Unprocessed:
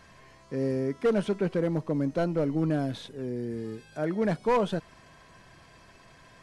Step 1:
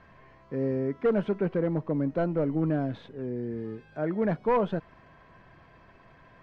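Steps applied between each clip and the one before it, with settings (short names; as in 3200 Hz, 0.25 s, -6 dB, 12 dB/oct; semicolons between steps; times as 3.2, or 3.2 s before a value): LPF 2100 Hz 12 dB/oct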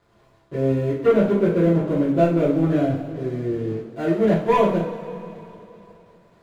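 median filter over 25 samples; crossover distortion -55 dBFS; two-slope reverb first 0.43 s, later 3.3 s, from -18 dB, DRR -9 dB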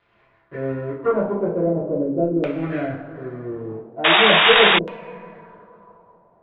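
LFO low-pass saw down 0.41 Hz 370–2800 Hz; tilt shelf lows -4 dB, about 670 Hz; painted sound noise, 4.04–4.79, 640–3800 Hz -11 dBFS; gain -3.5 dB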